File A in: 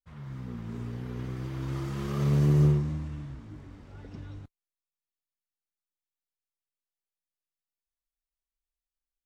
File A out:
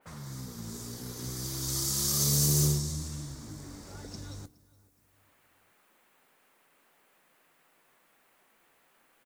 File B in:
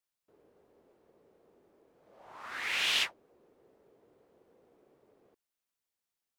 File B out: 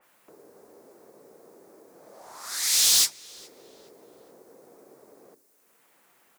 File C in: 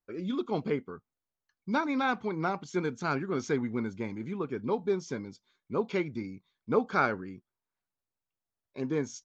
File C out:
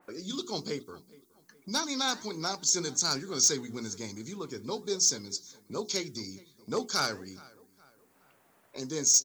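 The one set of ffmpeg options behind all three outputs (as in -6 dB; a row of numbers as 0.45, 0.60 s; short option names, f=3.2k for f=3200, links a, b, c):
-filter_complex "[0:a]acrossover=split=140|2700[a][b][c];[a]aecho=1:1:2.1:0.69[d];[b]acompressor=mode=upward:threshold=-32dB:ratio=2.5[e];[c]aexciter=amount=10.8:drive=9:freq=4k[f];[d][e][f]amix=inputs=3:normalize=0,flanger=delay=1.2:depth=6.6:regen=89:speed=1.2:shape=triangular,asoftclip=type=hard:threshold=-20.5dB,bandreject=f=60:t=h:w=6,bandreject=f=120:t=h:w=6,bandreject=f=180:t=h:w=6,bandreject=f=240:t=h:w=6,bandreject=f=300:t=h:w=6,bandreject=f=360:t=h:w=6,bandreject=f=420:t=h:w=6,asplit=2[g][h];[h]adelay=418,lowpass=f=4k:p=1,volume=-22dB,asplit=2[i][j];[j]adelay=418,lowpass=f=4k:p=1,volume=0.45,asplit=2[k][l];[l]adelay=418,lowpass=f=4k:p=1,volume=0.45[m];[i][k][m]amix=inputs=3:normalize=0[n];[g][n]amix=inputs=2:normalize=0,adynamicequalizer=threshold=0.00501:dfrequency=2600:dqfactor=0.7:tfrequency=2600:tqfactor=0.7:attack=5:release=100:ratio=0.375:range=2:mode=boostabove:tftype=highshelf"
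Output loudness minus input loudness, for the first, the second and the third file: -1.0, +10.5, +2.0 LU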